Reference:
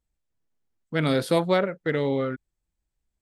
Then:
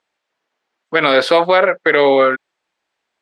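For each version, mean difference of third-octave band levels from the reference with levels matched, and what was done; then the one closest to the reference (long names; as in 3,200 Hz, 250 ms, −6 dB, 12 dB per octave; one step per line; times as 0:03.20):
6.0 dB: band-pass filter 630–3,500 Hz
boost into a limiter +22 dB
level −1 dB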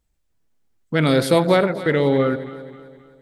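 3.0 dB: in parallel at −2 dB: brickwall limiter −20 dBFS, peak gain reduction 11.5 dB
on the sum: delay that swaps between a low-pass and a high-pass 132 ms, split 830 Hz, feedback 66%, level −11 dB
level +3.5 dB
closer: second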